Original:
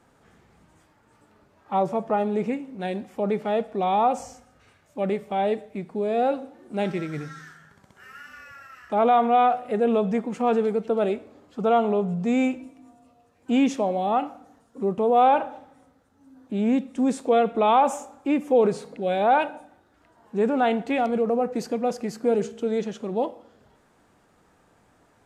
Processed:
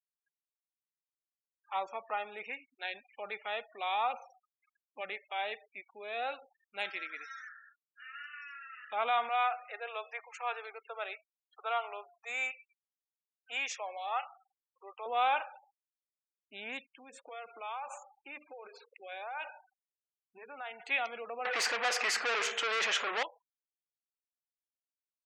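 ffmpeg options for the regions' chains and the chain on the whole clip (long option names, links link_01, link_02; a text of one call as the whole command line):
ffmpeg -i in.wav -filter_complex "[0:a]asettb=1/sr,asplit=3[link_01][link_02][link_03];[link_01]atrim=end=4.134[link_04];[link_02]atrim=start=4.13:end=5.01,asetpts=PTS-STARTPTS,afade=type=in:duration=0.004:curve=qsin,afade=type=out:start_time=0.876:duration=0.004:curve=qsin,highpass=110,lowpass=2800,equalizer=frequency=150:width=0.39:gain=6[link_05];[link_03]atrim=start=5.006[link_06];[link_04][link_05]acrossfade=duration=0.004:curve1=hsin:curve2=qsin[link_07];[link_07][link_06]acrossfade=duration=0.004:curve1=qsin:curve2=hsin,asettb=1/sr,asplit=3[link_08][link_09][link_10];[link_08]atrim=end=9.294[link_11];[link_09]atrim=start=9.29:end=15.06,asetpts=PTS-STARTPTS,afade=type=in:duration=0.004:curve=qsin,afade=type=out:start_time=5.766:duration=0.004:curve=qsin,highpass=520,lowpass=7300,equalizer=frequency=3100:width_type=o:width=0.53:gain=-4.5[link_12];[link_10]atrim=start=15.056[link_13];[link_11][link_12]acrossfade=duration=0.004:curve1=hsin:curve2=qsin[link_14];[link_14][link_13]acrossfade=duration=0.004:curve1=qsin:curve2=hsin,asettb=1/sr,asplit=3[link_15][link_16][link_17];[link_15]atrim=end=16.864[link_18];[link_16]atrim=start=16.86:end=20.8,asetpts=PTS-STARTPTS,afade=type=in:duration=0.004:curve=qsin,afade=type=out:start_time=3.936:duration=0.004:curve=qsin,lowpass=frequency=1900:poles=1,bandreject=frequency=60:width_type=h:width=6,bandreject=frequency=120:width_type=h:width=6,bandreject=frequency=180:width_type=h:width=6,bandreject=frequency=240:width_type=h:width=6,bandreject=frequency=300:width_type=h:width=6,bandreject=frequency=360:width_type=h:width=6,bandreject=frequency=420:width_type=h:width=6,bandreject=frequency=480:width_type=h:width=6,bandreject=frequency=540:width_type=h:width=6,bandreject=frequency=600:width_type=h:width=6,acompressor=threshold=-26dB:ratio=10:attack=3.2:release=140:knee=1:detection=peak[link_19];[link_17]atrim=start=20.796[link_20];[link_18][link_19]acrossfade=duration=0.004:curve1=hsin:curve2=qsin[link_21];[link_21][link_20]acrossfade=duration=0.004:curve1=qsin:curve2=hsin,asettb=1/sr,asplit=3[link_22][link_23][link_24];[link_22]atrim=end=21.454[link_25];[link_23]atrim=start=21.45:end=23.23,asetpts=PTS-STARTPTS,afade=type=in:duration=0.004:curve=qsin,afade=type=out:start_time=1.776:duration=0.004:curve=qsin,highpass=frequency=140:poles=1,equalizer=frequency=2000:width=4.3:gain=5.5,asplit=2[link_26][link_27];[link_27]highpass=frequency=720:poles=1,volume=33dB,asoftclip=type=tanh:threshold=-11.5dB[link_28];[link_26][link_28]amix=inputs=2:normalize=0,lowpass=frequency=1500:poles=1,volume=-6dB[link_29];[link_24]atrim=start=23.226[link_30];[link_25][link_29]acrossfade=duration=0.004:curve1=hsin:curve2=qsin[link_31];[link_31][link_30]acrossfade=duration=0.004:curve1=qsin:curve2=hsin,highpass=1500,equalizer=frequency=2500:width=3.5:gain=3.5,afftfilt=real='re*gte(hypot(re,im),0.00447)':imag='im*gte(hypot(re,im),0.00447)':win_size=1024:overlap=0.75" out.wav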